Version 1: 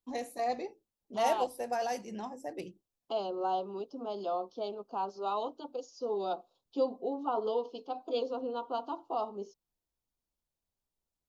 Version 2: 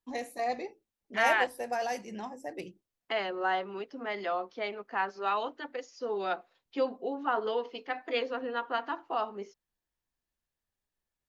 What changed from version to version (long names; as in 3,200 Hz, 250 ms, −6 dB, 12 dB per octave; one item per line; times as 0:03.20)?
second voice: remove Butterworth band-reject 1,900 Hz, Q 0.83
master: add parametric band 2,000 Hz +6 dB 1 octave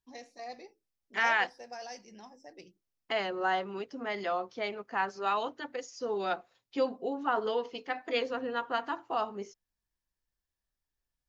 first voice: add transistor ladder low-pass 5,800 Hz, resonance 70%
second voice: remove three-way crossover with the lows and the highs turned down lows −14 dB, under 180 Hz, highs −15 dB, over 5,200 Hz